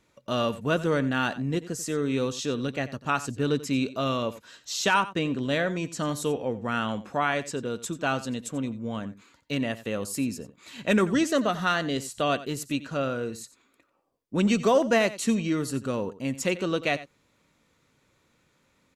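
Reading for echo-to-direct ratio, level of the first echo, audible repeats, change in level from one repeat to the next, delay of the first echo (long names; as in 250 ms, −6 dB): −16.0 dB, −16.0 dB, 1, repeats not evenly spaced, 89 ms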